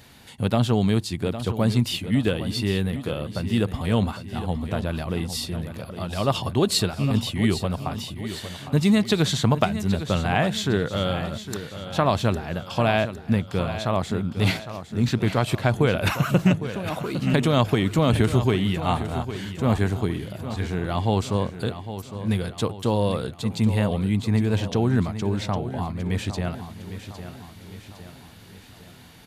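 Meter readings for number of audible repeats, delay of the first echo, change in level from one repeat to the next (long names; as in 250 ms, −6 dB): 4, 808 ms, −6.0 dB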